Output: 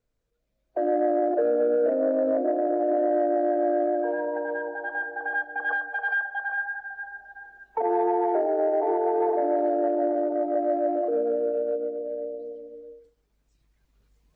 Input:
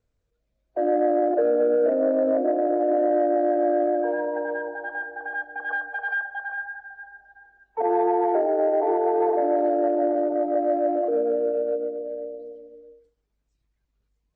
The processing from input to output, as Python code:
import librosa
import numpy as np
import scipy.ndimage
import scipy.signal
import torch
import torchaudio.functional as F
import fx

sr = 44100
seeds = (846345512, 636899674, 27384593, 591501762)

y = fx.recorder_agc(x, sr, target_db=-17.0, rise_db_per_s=5.3, max_gain_db=30)
y = fx.peak_eq(y, sr, hz=73.0, db=fx.steps((0.0, -15.0), (10.6, -7.0)), octaves=0.58)
y = y * 10.0 ** (-2.0 / 20.0)